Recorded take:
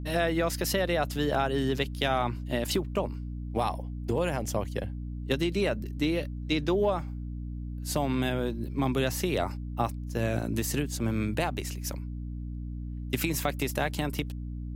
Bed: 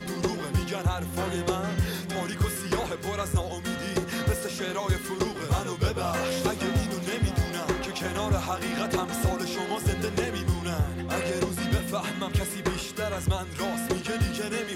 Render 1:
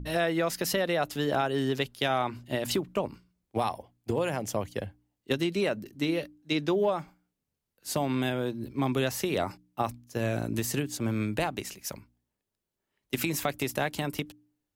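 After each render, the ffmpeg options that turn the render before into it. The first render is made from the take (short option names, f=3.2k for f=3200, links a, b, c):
-af "bandreject=f=60:t=h:w=4,bandreject=f=120:t=h:w=4,bandreject=f=180:t=h:w=4,bandreject=f=240:t=h:w=4,bandreject=f=300:t=h:w=4"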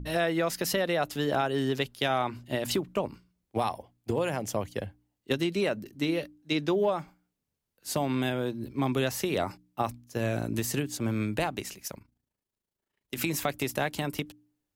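-filter_complex "[0:a]asettb=1/sr,asplit=3[a][b][c];[a]atrim=end=11.874[d];[b]atrim=start=11.87:end=13.17,asetpts=PTS-STARTPTS,afade=t=in:d=0.004:c=qsin,afade=t=out:st=1.296:d=0.004:c=qsin,tremolo=f=27:d=0.75[e];[c]atrim=start=13.166[f];[d][e]acrossfade=d=0.004:c1=hsin:c2=qsin[g];[g][f]acrossfade=d=0.004:c1=qsin:c2=hsin"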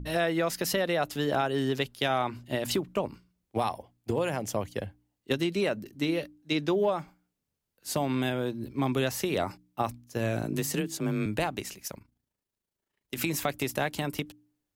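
-filter_complex "[0:a]asettb=1/sr,asplit=3[a][b][c];[a]atrim=end=10.434[d];[b]atrim=start=10.43:end=11.26,asetpts=PTS-STARTPTS,afade=t=in:d=0.004:c=qsin,afade=t=out:st=0.826:d=0.004:c=qsin,afreqshift=28[e];[c]atrim=start=11.256[f];[d][e]acrossfade=d=0.004:c1=hsin:c2=qsin[g];[g][f]acrossfade=d=0.004:c1=qsin:c2=hsin"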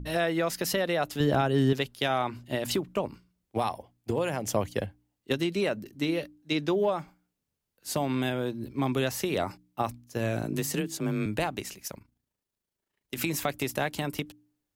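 -filter_complex "[0:a]asettb=1/sr,asplit=3[a][b][c];[a]atrim=end=1.204[d];[b]atrim=start=1.2:end=1.73,asetpts=PTS-STARTPTS,afade=t=in:d=0.004:c=qsin,afade=t=out:st=0.526:d=0.004:c=qsin,lowshelf=f=220:g=12[e];[c]atrim=start=1.726[f];[d][e]acrossfade=d=0.004:c1=hsin:c2=qsin[g];[g][f]acrossfade=d=0.004:c1=qsin:c2=hsin,asplit=3[h][i][j];[h]atrim=end=4.462[k];[i]atrim=start=4.458:end=4.862,asetpts=PTS-STARTPTS,volume=3.5dB[l];[j]atrim=start=4.858[m];[k][l]acrossfade=d=0.004:c1=hsin:c2=hsin[n];[n][m]acrossfade=d=0.004:c1=hsin:c2=hsin"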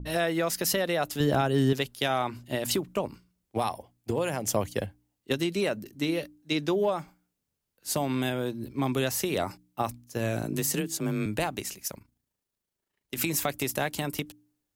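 -af "adynamicequalizer=threshold=0.00447:dfrequency=5200:dqfactor=0.7:tfrequency=5200:tqfactor=0.7:attack=5:release=100:ratio=0.375:range=3:mode=boostabove:tftype=highshelf"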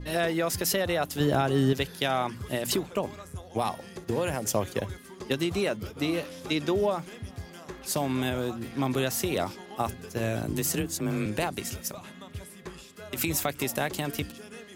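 -filter_complex "[1:a]volume=-14dB[a];[0:a][a]amix=inputs=2:normalize=0"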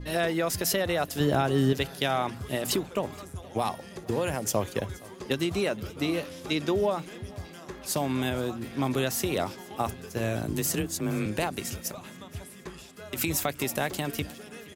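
-af "aecho=1:1:472|944|1416|1888:0.075|0.0442|0.0261|0.0154"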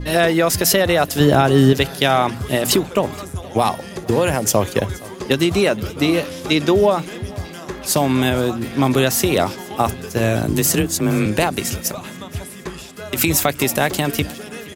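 -af "volume=11.5dB,alimiter=limit=-2dB:level=0:latency=1"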